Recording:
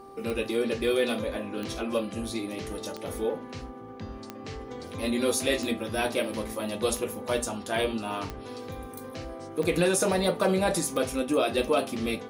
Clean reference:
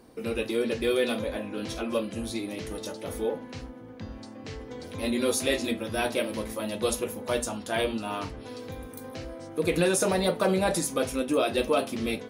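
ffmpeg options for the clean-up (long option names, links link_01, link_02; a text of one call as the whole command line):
ffmpeg -i in.wav -af "adeclick=threshold=4,bandreject=frequency=393.5:width_type=h:width=4,bandreject=frequency=787:width_type=h:width=4,bandreject=frequency=1180.5:width_type=h:width=4" out.wav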